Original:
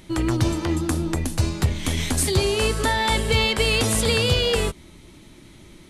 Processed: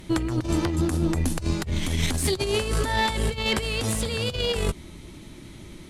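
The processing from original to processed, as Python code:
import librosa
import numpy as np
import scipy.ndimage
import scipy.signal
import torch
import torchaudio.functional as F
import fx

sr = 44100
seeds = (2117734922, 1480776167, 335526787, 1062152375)

y = fx.low_shelf(x, sr, hz=290.0, db=3.5)
y = fx.over_compress(y, sr, threshold_db=-22.0, ratio=-0.5)
y = fx.tube_stage(y, sr, drive_db=12.0, bias=0.4)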